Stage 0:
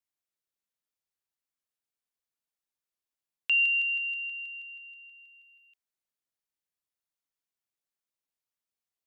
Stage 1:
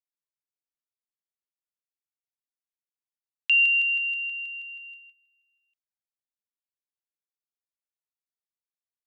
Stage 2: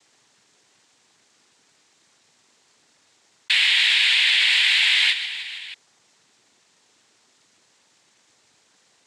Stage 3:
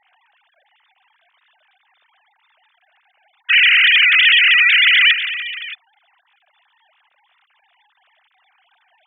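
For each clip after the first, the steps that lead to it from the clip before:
gate -50 dBFS, range -19 dB; trim +4.5 dB
noise-vocoded speech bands 6; level flattener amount 100%
formants replaced by sine waves; trim +6.5 dB

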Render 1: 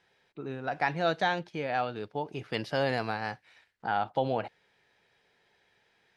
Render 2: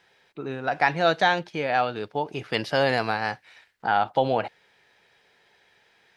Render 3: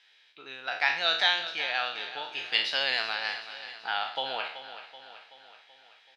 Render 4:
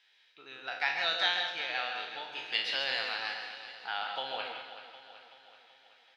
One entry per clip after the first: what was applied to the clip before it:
bass shelf 380 Hz -5 dB; trim +8 dB
spectral sustain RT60 0.51 s; band-pass filter 3.4 kHz, Q 1.7; on a send: feedback delay 380 ms, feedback 56%, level -12.5 dB; on the sum: trim +4.5 dB
reverberation RT60 0.35 s, pre-delay 135 ms, DRR 4.5 dB; trim -5.5 dB

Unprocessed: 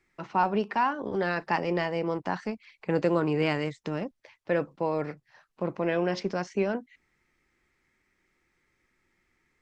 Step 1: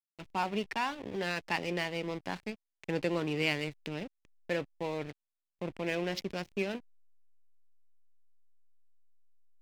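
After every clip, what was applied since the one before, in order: hysteresis with a dead band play -33.5 dBFS; resonant high shelf 1.8 kHz +8.5 dB, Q 1.5; trim -6.5 dB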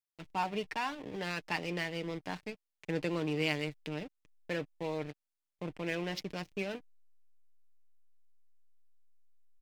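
comb 6.6 ms, depth 36%; trim -2.5 dB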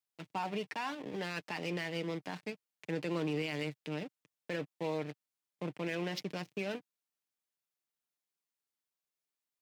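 high-pass 120 Hz 24 dB/octave; peak limiter -27.5 dBFS, peak gain reduction 9.5 dB; trim +1 dB

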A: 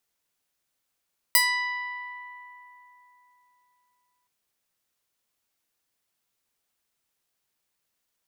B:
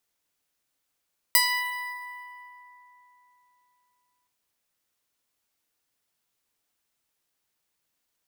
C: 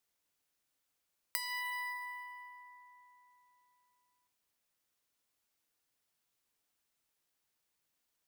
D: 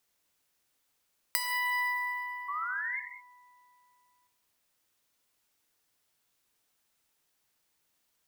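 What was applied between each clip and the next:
FDN reverb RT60 2 s, low-frequency decay 1.35×, high-frequency decay 0.8×, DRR 10.5 dB
compression 10:1, threshold -31 dBFS, peak gain reduction 15.5 dB; trim -4 dB
painted sound rise, 2.48–3.00 s, 1.1–2.2 kHz -41 dBFS; gated-style reverb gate 230 ms flat, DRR 7.5 dB; trim +6 dB

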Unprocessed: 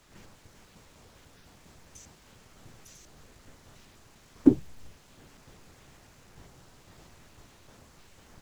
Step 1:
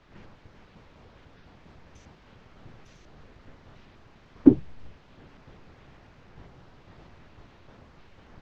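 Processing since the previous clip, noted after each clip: distance through air 250 m; trim +4 dB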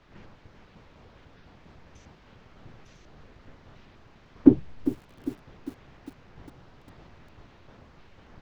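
bit-crushed delay 401 ms, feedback 55%, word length 7-bit, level -12.5 dB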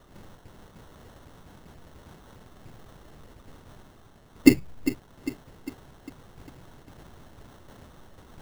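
reverse; upward compressor, threshold -43 dBFS; reverse; sample-rate reducer 2.4 kHz, jitter 0%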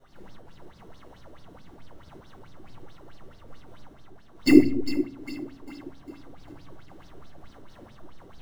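simulated room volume 900 m³, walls furnished, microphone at 7.7 m; sweeping bell 4.6 Hz 340–5100 Hz +16 dB; trim -15 dB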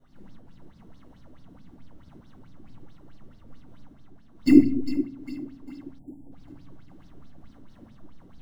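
spectral selection erased 5.99–6.32 s, 940–7000 Hz; FFT filter 110 Hz 0 dB, 260 Hz +5 dB, 390 Hz -7 dB; trim -1 dB

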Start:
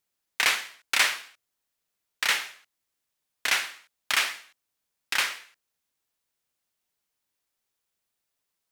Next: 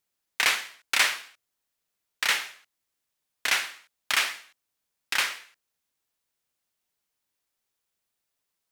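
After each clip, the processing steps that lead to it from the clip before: no audible change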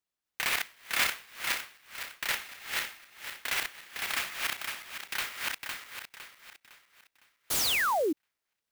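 backward echo that repeats 254 ms, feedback 60%, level -0.5 dB; painted sound fall, 7.50–8.13 s, 280–11000 Hz -19 dBFS; sampling jitter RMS 0.029 ms; trim -8 dB

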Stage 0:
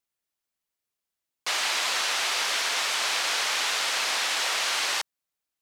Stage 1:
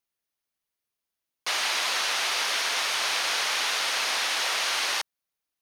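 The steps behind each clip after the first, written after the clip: band-stop 7.6 kHz, Q 6.9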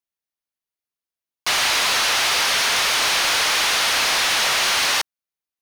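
waveshaping leveller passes 3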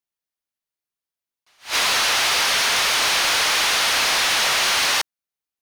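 attacks held to a fixed rise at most 240 dB/s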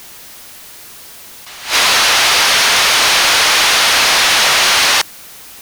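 jump at every zero crossing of -35 dBFS; trim +7.5 dB

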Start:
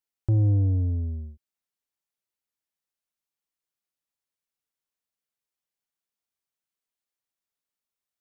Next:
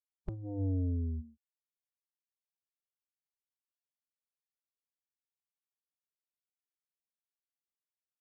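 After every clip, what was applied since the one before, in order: spectral noise reduction 24 dB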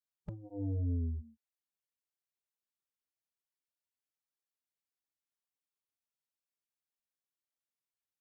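cancelling through-zero flanger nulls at 1 Hz, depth 6.5 ms

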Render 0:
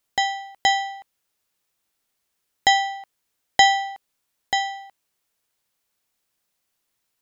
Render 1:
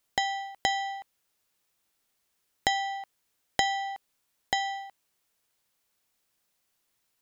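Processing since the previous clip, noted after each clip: compression 4:1, threshold -25 dBFS, peak gain reduction 13 dB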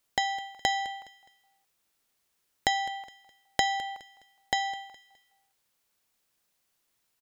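feedback delay 208 ms, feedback 34%, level -17.5 dB

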